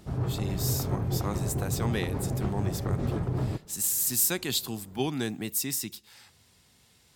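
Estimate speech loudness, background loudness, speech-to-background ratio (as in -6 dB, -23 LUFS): -30.5 LUFS, -31.5 LUFS, 1.0 dB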